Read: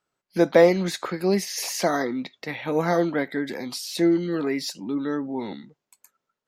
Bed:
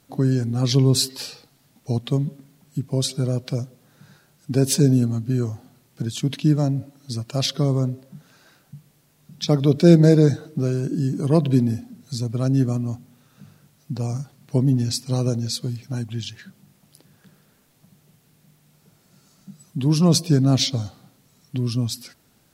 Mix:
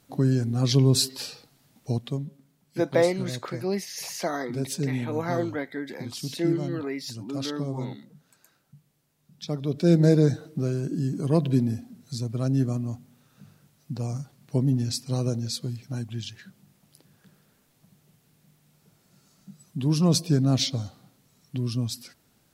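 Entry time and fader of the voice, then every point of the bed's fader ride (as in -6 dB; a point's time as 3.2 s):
2.40 s, -6.0 dB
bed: 1.88 s -2.5 dB
2.28 s -11.5 dB
9.63 s -11.5 dB
10.07 s -4.5 dB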